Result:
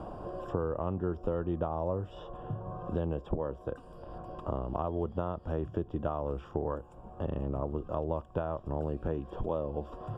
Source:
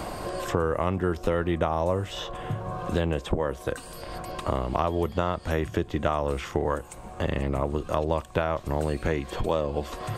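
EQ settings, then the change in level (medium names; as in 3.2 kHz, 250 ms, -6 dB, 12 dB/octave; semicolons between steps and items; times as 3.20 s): boxcar filter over 21 samples; -6.0 dB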